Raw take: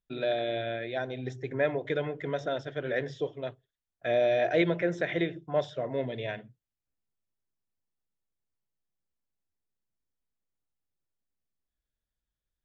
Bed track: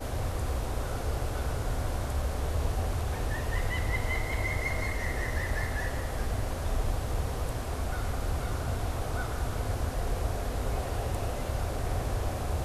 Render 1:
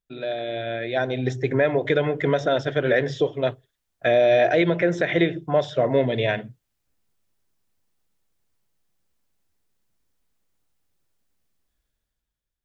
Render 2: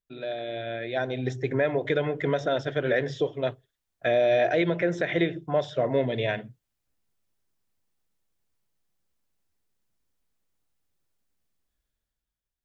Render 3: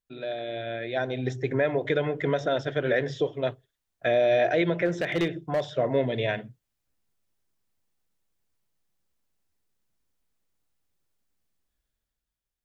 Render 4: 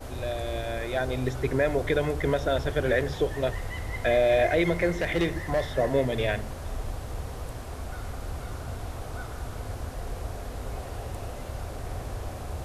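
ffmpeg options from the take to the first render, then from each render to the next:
ffmpeg -i in.wav -af "dynaudnorm=framelen=170:gausssize=11:maxgain=14dB,alimiter=limit=-10dB:level=0:latency=1:release=214" out.wav
ffmpeg -i in.wav -af "volume=-4.5dB" out.wav
ffmpeg -i in.wav -filter_complex "[0:a]asplit=3[link_01][link_02][link_03];[link_01]afade=type=out:start_time=4.85:duration=0.02[link_04];[link_02]asoftclip=type=hard:threshold=-20.5dB,afade=type=in:start_time=4.85:duration=0.02,afade=type=out:start_time=5.62:duration=0.02[link_05];[link_03]afade=type=in:start_time=5.62:duration=0.02[link_06];[link_04][link_05][link_06]amix=inputs=3:normalize=0" out.wav
ffmpeg -i in.wav -i bed.wav -filter_complex "[1:a]volume=-4dB[link_01];[0:a][link_01]amix=inputs=2:normalize=0" out.wav

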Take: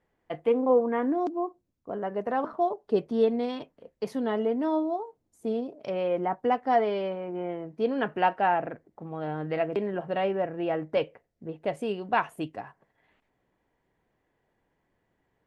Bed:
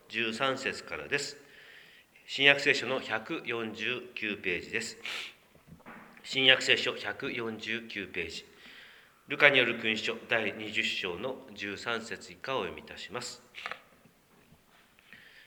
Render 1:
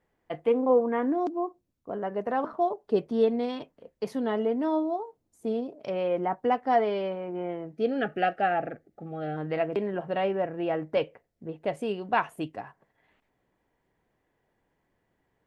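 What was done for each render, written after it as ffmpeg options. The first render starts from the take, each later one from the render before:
ffmpeg -i in.wav -filter_complex "[0:a]asplit=3[link_01][link_02][link_03];[link_01]afade=type=out:start_time=7.73:duration=0.02[link_04];[link_02]asuperstop=centerf=990:order=20:qfactor=3.5,afade=type=in:start_time=7.73:duration=0.02,afade=type=out:start_time=9.36:duration=0.02[link_05];[link_03]afade=type=in:start_time=9.36:duration=0.02[link_06];[link_04][link_05][link_06]amix=inputs=3:normalize=0" out.wav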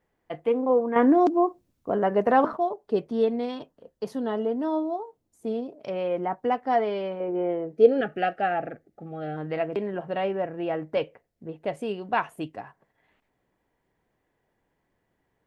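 ffmpeg -i in.wav -filter_complex "[0:a]asettb=1/sr,asplit=3[link_01][link_02][link_03];[link_01]atrim=end=3.544[link_04];[link_02]atrim=start=3.54:end=4.77,asetpts=PTS-STARTPTS,afade=type=in:duration=0.004:curve=qsin,afade=type=out:start_time=1.226:duration=0.004:curve=qsin,equalizer=frequency=2200:width=3.6:gain=-8.5[link_05];[link_03]atrim=start=4.766[link_06];[link_04][link_05]acrossfade=duration=0.004:curve1=hsin:curve2=qsin[link_07];[link_07][link_06]acrossfade=duration=0.004:curve1=qsin:curve2=hsin,asettb=1/sr,asplit=3[link_08][link_09][link_10];[link_08]atrim=end=7.204[link_11];[link_09]atrim=start=7.2:end=8.01,asetpts=PTS-STARTPTS,afade=type=in:duration=0.004:curve=qsin,afade=type=out:start_time=0.806:duration=0.004:curve=qsin,equalizer=frequency=450:width_type=o:width=0.77:gain=11.5[link_12];[link_10]atrim=start=8.006[link_13];[link_11][link_12]acrossfade=duration=0.004:curve1=hsin:curve2=qsin[link_14];[link_14][link_13]acrossfade=duration=0.004:curve1=qsin:curve2=hsin,asplit=3[link_15][link_16][link_17];[link_15]atrim=end=0.962[link_18];[link_16]atrim=start=0.958:end=2.572,asetpts=PTS-STARTPTS,volume=8.5dB[link_19];[link_17]atrim=start=2.568[link_20];[link_18][link_19]acrossfade=duration=0.004:curve1=hsin:curve2=hsin[link_21];[link_21][link_20]acrossfade=duration=0.004:curve1=hsin:curve2=hsin" out.wav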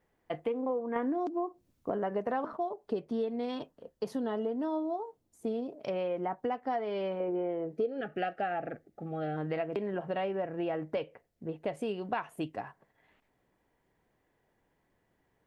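ffmpeg -i in.wav -af "acompressor=threshold=-30dB:ratio=6" out.wav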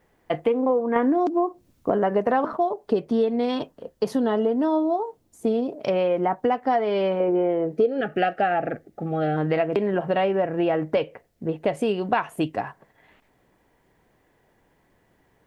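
ffmpeg -i in.wav -af "volume=11dB" out.wav

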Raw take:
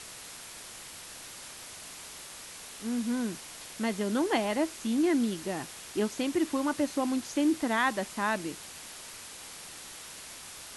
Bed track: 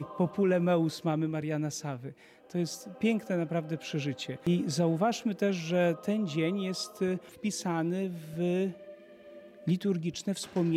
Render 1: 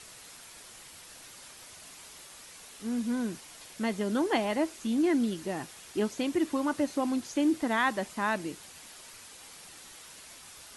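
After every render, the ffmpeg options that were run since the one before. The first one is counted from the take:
ffmpeg -i in.wav -af "afftdn=noise_reduction=6:noise_floor=-46" out.wav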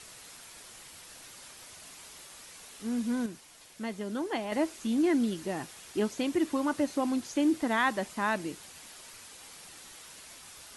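ffmpeg -i in.wav -filter_complex "[0:a]asplit=3[link_01][link_02][link_03];[link_01]atrim=end=3.262[link_04];[link_02]atrim=start=3.258:end=4.522,asetpts=PTS-STARTPTS,volume=-5.5dB[link_05];[link_03]atrim=start=4.518[link_06];[link_04][link_05]acrossfade=duration=0.004:curve1=hsin:curve2=hsin[link_07];[link_07][link_06]acrossfade=duration=0.004:curve1=hsin:curve2=hsin" out.wav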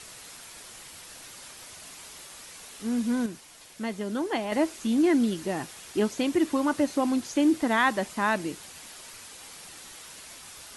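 ffmpeg -i in.wav -af "volume=4dB" out.wav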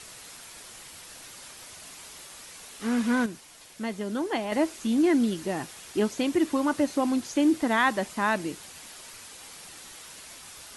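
ffmpeg -i in.wav -filter_complex "[0:a]asplit=3[link_01][link_02][link_03];[link_01]afade=type=out:start_time=2.81:duration=0.02[link_04];[link_02]equalizer=frequency=1400:width_type=o:width=2.3:gain=11.5,afade=type=in:start_time=2.81:duration=0.02,afade=type=out:start_time=3.24:duration=0.02[link_05];[link_03]afade=type=in:start_time=3.24:duration=0.02[link_06];[link_04][link_05][link_06]amix=inputs=3:normalize=0" out.wav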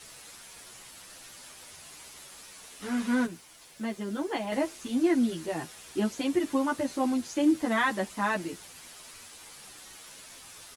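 ffmpeg -i in.wav -filter_complex "[0:a]acrusher=bits=9:mix=0:aa=0.000001,asplit=2[link_01][link_02];[link_02]adelay=10,afreqshift=-0.54[link_03];[link_01][link_03]amix=inputs=2:normalize=1" out.wav

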